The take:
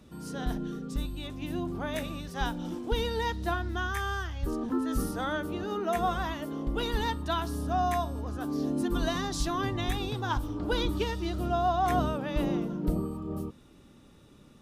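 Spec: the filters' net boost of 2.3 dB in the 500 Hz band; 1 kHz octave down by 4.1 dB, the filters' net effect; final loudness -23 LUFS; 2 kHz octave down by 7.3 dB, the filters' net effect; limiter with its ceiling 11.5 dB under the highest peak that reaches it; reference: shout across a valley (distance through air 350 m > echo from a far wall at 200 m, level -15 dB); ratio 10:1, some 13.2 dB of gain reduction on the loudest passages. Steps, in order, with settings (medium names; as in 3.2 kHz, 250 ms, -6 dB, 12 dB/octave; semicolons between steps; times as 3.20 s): peaking EQ 500 Hz +7 dB; peaking EQ 1 kHz -8 dB; peaking EQ 2 kHz -3 dB; compression 10:1, threshold -36 dBFS; peak limiter -38 dBFS; distance through air 350 m; echo from a far wall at 200 m, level -15 dB; trim +24 dB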